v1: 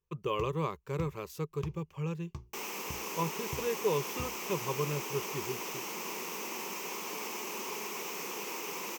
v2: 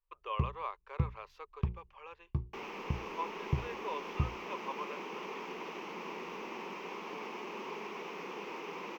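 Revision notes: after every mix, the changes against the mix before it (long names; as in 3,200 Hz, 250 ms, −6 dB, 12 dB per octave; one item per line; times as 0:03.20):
speech: add high-pass filter 650 Hz 24 dB per octave
first sound: add low-shelf EQ 490 Hz +10.5 dB
master: add high-frequency loss of the air 310 metres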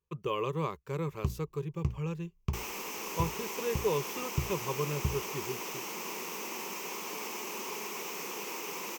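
speech: remove high-pass filter 650 Hz 24 dB per octave
first sound: entry +0.85 s
master: remove high-frequency loss of the air 310 metres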